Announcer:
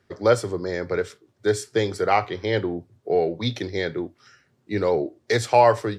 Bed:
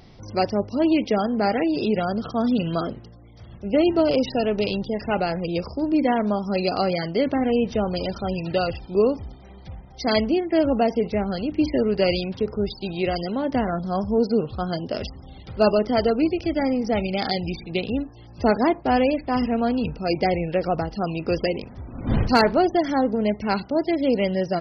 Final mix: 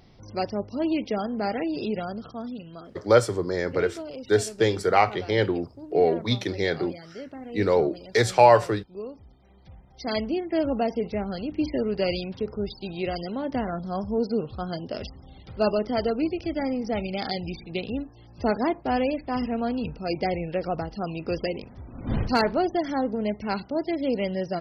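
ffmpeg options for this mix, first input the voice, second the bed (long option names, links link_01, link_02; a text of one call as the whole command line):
ffmpeg -i stem1.wav -i stem2.wav -filter_complex "[0:a]adelay=2850,volume=0.5dB[link_01];[1:a]volume=6.5dB,afade=type=out:start_time=1.87:duration=0.77:silence=0.266073,afade=type=in:start_time=9.11:duration=1.42:silence=0.237137[link_02];[link_01][link_02]amix=inputs=2:normalize=0" out.wav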